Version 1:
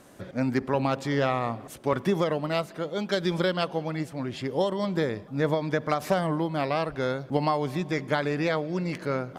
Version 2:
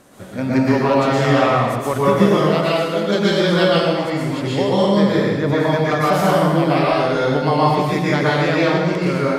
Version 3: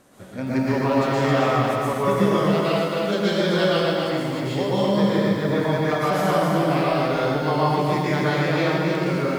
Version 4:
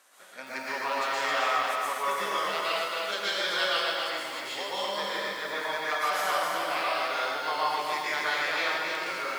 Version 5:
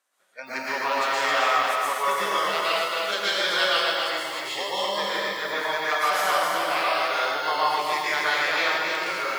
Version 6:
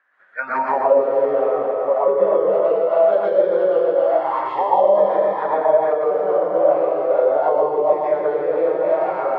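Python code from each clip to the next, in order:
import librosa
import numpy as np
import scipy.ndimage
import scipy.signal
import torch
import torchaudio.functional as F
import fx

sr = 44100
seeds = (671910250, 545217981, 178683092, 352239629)

y1 = fx.rev_plate(x, sr, seeds[0], rt60_s=1.3, hf_ratio=1.0, predelay_ms=105, drr_db=-7.5)
y1 = y1 * librosa.db_to_amplitude(3.0)
y2 = fx.echo_crushed(y1, sr, ms=268, feedback_pct=35, bits=7, wet_db=-4.0)
y2 = y2 * librosa.db_to_amplitude(-6.0)
y3 = scipy.signal.sosfilt(scipy.signal.butter(2, 1100.0, 'highpass', fs=sr, output='sos'), y2)
y4 = fx.noise_reduce_blind(y3, sr, reduce_db=20)
y4 = y4 * librosa.db_to_amplitude(5.0)
y5 = fx.envelope_lowpass(y4, sr, base_hz=470.0, top_hz=1700.0, q=5.6, full_db=-20.0, direction='down')
y5 = y5 * librosa.db_to_amplitude(5.0)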